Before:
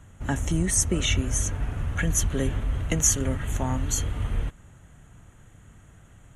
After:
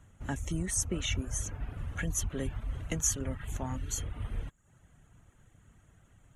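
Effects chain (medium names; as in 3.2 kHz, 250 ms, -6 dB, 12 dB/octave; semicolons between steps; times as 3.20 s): reverb removal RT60 0.57 s; trim -8 dB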